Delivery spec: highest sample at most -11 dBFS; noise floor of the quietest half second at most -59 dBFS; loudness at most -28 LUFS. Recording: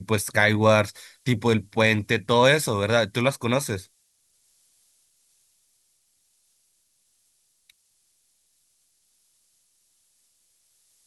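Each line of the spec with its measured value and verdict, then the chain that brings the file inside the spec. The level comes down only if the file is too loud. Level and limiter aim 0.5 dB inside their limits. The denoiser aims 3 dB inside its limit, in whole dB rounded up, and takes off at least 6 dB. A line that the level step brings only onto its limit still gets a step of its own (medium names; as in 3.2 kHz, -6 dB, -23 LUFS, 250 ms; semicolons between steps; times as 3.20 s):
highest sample -4.5 dBFS: fail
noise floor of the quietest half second -68 dBFS: pass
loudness -22.0 LUFS: fail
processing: trim -6.5 dB; peak limiter -11.5 dBFS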